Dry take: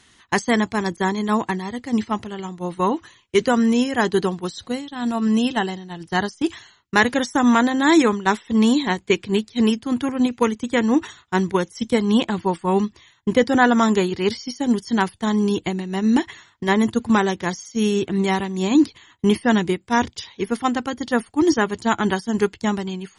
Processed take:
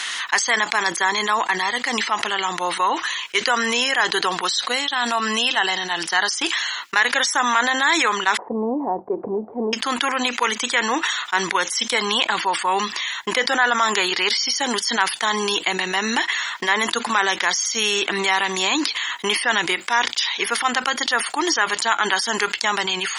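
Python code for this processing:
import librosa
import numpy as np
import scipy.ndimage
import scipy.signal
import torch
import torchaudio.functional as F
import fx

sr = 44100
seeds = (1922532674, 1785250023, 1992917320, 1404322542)

y = fx.steep_lowpass(x, sr, hz=760.0, slope=36, at=(8.37, 9.73))
y = scipy.signal.sosfilt(scipy.signal.butter(2, 1200.0, 'highpass', fs=sr, output='sos'), y)
y = fx.high_shelf(y, sr, hz=6500.0, db=-9.0)
y = fx.env_flatten(y, sr, amount_pct=70)
y = y * librosa.db_to_amplitude(1.0)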